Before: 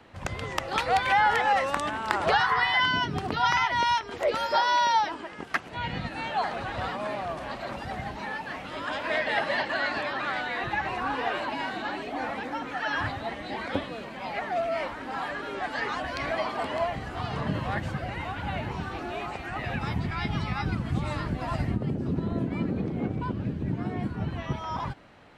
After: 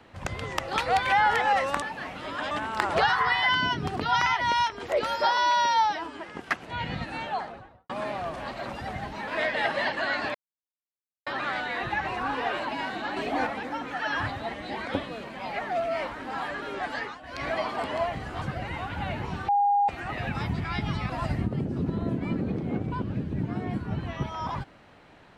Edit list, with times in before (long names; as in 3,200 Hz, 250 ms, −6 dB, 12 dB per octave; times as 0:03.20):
0:04.68–0:05.23: time-stretch 1.5×
0:06.13–0:06.93: fade out and dull
0:08.31–0:09.00: move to 0:01.82
0:10.07: splice in silence 0.92 s
0:11.97–0:12.27: clip gain +5 dB
0:15.73–0:16.28: duck −15 dB, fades 0.26 s
0:17.22–0:17.88: remove
0:18.95–0:19.35: beep over 812 Hz −19 dBFS
0:20.56–0:21.39: remove